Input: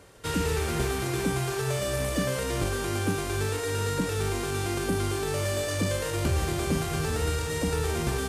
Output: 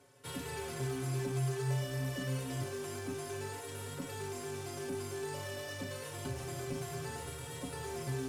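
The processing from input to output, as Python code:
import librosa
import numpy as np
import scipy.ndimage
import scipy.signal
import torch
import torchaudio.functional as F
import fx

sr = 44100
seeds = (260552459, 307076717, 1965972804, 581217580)

y = scipy.signal.sosfilt(scipy.signal.butter(4, 75.0, 'highpass', fs=sr, output='sos'), x)
y = 10.0 ** (-21.5 / 20.0) * np.tanh(y / 10.0 ** (-21.5 / 20.0))
y = fx.stiff_resonator(y, sr, f0_hz=130.0, decay_s=0.2, stiffness=0.008)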